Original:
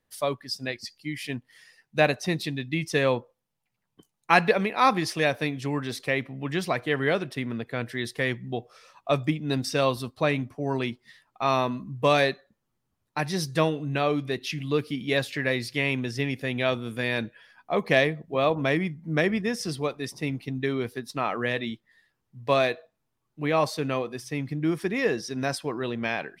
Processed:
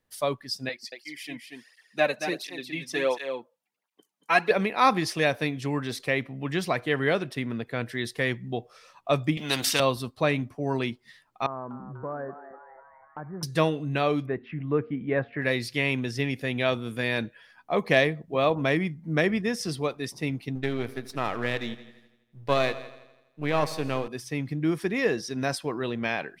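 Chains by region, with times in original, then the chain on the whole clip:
0.69–4.51 HPF 300 Hz + echo 0.23 s -7 dB + tape flanging out of phase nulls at 1.4 Hz, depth 3 ms
9.37–9.8 HPF 250 Hz 6 dB/oct + bell 3100 Hz +11 dB 0.71 oct + spectral compressor 2:1
11.46–13.43 steep low-pass 1600 Hz 72 dB/oct + compressor 2:1, threshold -41 dBFS + frequency-shifting echo 0.246 s, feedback 59%, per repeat +130 Hz, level -12 dB
14.26–15.42 LPF 1800 Hz 24 dB/oct + de-hum 233.6 Hz, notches 3
20.55–24.08 half-wave gain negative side -7 dB + multi-head echo 83 ms, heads first and second, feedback 42%, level -19 dB
whole clip: dry

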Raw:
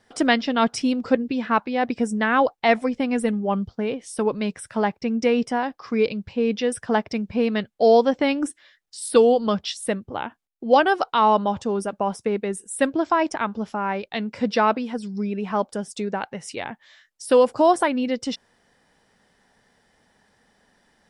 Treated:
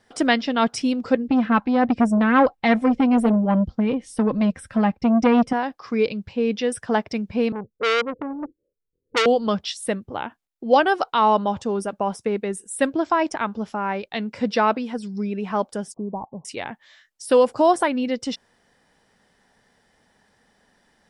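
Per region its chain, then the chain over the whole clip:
1.28–5.53 tone controls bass +11 dB, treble -6 dB + comb 3.8 ms, depth 49% + core saturation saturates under 680 Hz
7.52–9.26 steep low-pass 500 Hz 72 dB/oct + comb 2 ms, depth 45% + core saturation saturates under 3000 Hz
15.94–16.45 CVSD 64 kbps + Chebyshev low-pass 1100 Hz, order 8 + dynamic EQ 480 Hz, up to -6 dB, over -44 dBFS, Q 1.9
whole clip: dry

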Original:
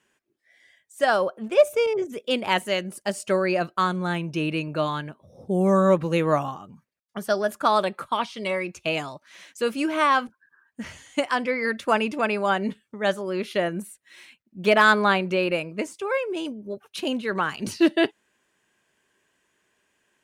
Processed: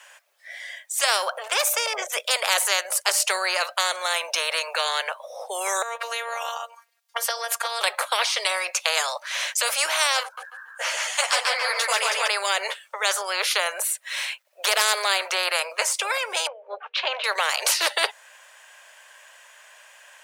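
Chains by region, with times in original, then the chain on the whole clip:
5.82–7.81 robotiser 232 Hz + compressor 10:1, threshold -29 dBFS
10.23–12.28 feedback echo 0.142 s, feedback 25%, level -3.5 dB + ensemble effect
16.47–17.24 LPF 3300 Hz 24 dB/oct + notches 60/120/180/240/300/360/420/480 Hz + three-band expander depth 40%
whole clip: steep high-pass 540 Hz 72 dB/oct; dynamic EQ 2900 Hz, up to -5 dB, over -43 dBFS, Q 2.3; spectral compressor 4:1; gain +3.5 dB

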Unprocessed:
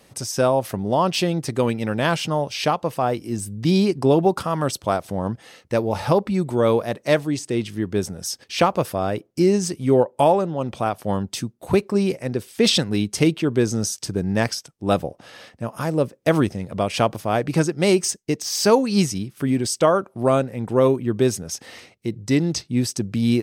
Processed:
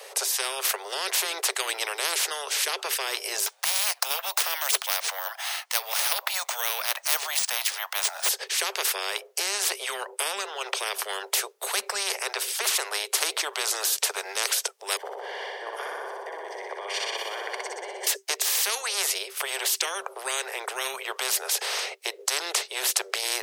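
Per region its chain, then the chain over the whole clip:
3.46–8.29 steep high-pass 680 Hz 72 dB/oct + careless resampling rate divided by 3×, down none, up hold
14.97–18.07 running mean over 34 samples + negative-ratio compressor -30 dBFS + flutter echo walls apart 10.5 m, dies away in 1.3 s
whole clip: Chebyshev high-pass 390 Hz, order 10; AGC gain up to 6 dB; spectral compressor 10:1

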